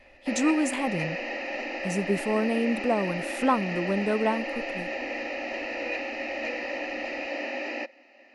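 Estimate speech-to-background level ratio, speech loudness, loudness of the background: 4.0 dB, -28.0 LUFS, -32.0 LUFS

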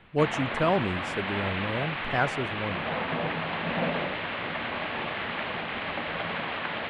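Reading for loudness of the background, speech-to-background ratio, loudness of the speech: -31.0 LUFS, 1.0 dB, -30.0 LUFS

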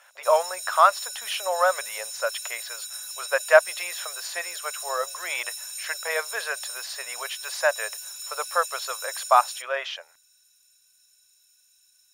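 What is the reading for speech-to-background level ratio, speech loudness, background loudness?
8.0 dB, -25.5 LUFS, -33.5 LUFS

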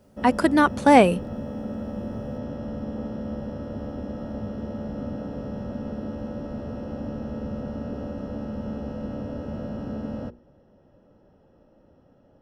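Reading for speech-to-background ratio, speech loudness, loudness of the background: 15.0 dB, -18.5 LUFS, -33.5 LUFS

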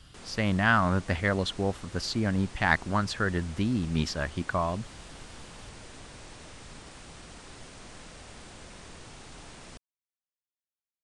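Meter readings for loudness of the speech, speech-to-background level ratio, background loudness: -28.5 LUFS, 18.5 dB, -47.0 LUFS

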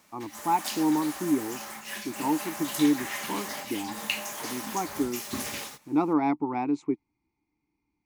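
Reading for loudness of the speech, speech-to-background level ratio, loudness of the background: -29.0 LUFS, 5.5 dB, -34.5 LUFS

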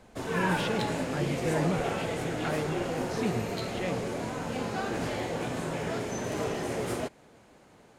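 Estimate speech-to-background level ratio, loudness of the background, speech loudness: -3.0 dB, -32.5 LUFS, -35.5 LUFS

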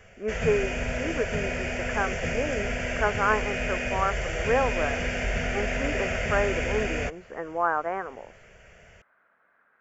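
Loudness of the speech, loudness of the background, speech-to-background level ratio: -30.0 LUFS, -29.5 LUFS, -0.5 dB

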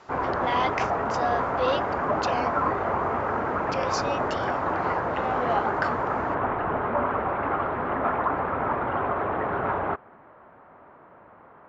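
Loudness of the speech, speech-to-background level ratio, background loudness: -31.5 LUFS, -5.0 dB, -26.5 LUFS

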